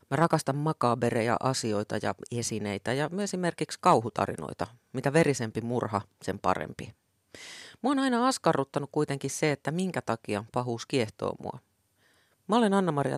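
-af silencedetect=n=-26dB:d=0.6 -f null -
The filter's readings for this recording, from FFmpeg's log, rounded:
silence_start: 6.82
silence_end: 7.84 | silence_duration: 1.02
silence_start: 11.50
silence_end: 12.50 | silence_duration: 1.00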